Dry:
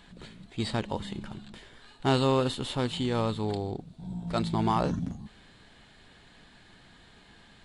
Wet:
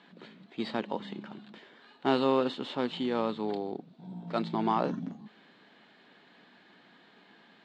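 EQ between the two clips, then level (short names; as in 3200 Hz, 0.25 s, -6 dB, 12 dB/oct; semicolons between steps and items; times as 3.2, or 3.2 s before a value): HPF 200 Hz 24 dB/oct; air absorption 190 m; 0.0 dB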